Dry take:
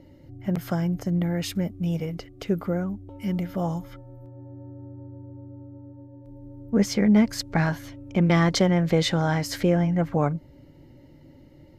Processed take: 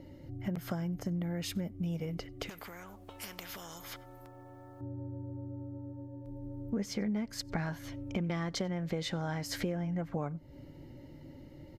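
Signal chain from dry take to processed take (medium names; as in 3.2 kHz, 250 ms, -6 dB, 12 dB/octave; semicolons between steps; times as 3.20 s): compression 5:1, threshold -33 dBFS, peak gain reduction 17 dB; echo from a far wall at 16 m, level -28 dB; 2.49–4.81 s: spectrum-flattening compressor 4:1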